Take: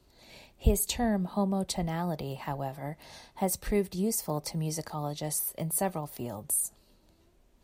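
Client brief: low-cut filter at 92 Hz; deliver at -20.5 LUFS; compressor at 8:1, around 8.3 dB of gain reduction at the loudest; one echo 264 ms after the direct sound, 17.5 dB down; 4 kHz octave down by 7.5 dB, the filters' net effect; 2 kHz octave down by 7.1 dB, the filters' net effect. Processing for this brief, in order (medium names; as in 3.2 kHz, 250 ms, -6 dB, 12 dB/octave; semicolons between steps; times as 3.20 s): high-pass 92 Hz; peaking EQ 2 kHz -6.5 dB; peaking EQ 4 kHz -8 dB; compression 8:1, threshold -30 dBFS; delay 264 ms -17.5 dB; trim +15.5 dB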